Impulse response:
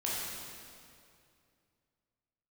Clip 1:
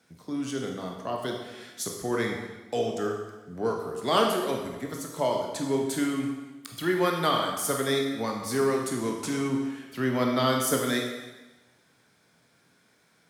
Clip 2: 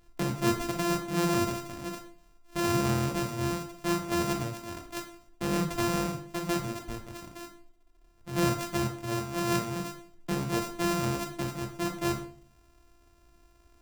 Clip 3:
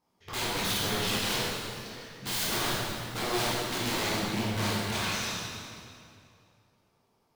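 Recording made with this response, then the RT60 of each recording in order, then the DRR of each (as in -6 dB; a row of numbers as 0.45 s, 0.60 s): 3; 1.1 s, 0.50 s, 2.4 s; 0.5 dB, 2.5 dB, -7.0 dB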